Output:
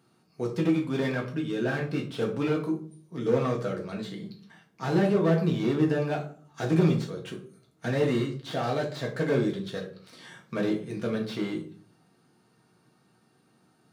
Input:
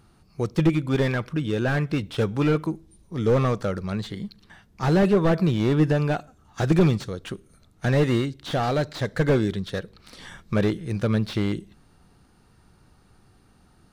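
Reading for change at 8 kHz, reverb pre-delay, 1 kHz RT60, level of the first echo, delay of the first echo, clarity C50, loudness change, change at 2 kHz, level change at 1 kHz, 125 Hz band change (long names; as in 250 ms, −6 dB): −5.0 dB, 4 ms, 0.40 s, no echo audible, no echo audible, 9.5 dB, −4.5 dB, −4.5 dB, −5.0 dB, −7.0 dB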